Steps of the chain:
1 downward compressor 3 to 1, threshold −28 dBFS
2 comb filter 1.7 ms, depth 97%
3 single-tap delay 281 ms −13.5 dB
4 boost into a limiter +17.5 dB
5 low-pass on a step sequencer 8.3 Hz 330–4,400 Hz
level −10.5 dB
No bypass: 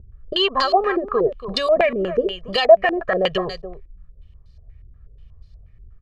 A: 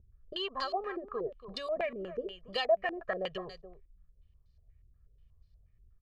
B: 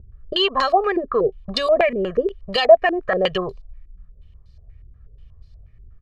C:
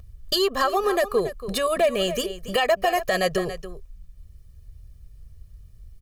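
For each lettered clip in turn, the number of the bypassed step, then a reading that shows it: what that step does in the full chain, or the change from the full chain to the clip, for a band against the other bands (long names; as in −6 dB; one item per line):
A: 4, 2 kHz band +2.0 dB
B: 3, change in momentary loudness spread −2 LU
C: 5, 125 Hz band +3.0 dB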